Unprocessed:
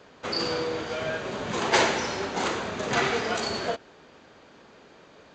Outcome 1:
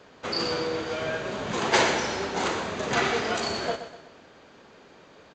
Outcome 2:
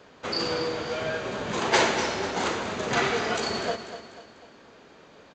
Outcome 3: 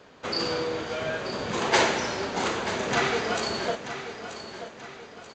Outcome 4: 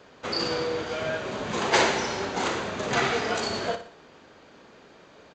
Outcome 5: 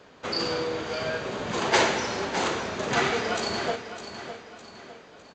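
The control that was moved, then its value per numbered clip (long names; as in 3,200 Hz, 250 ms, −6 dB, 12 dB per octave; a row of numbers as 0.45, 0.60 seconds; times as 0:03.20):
repeating echo, delay time: 124, 246, 933, 60, 607 milliseconds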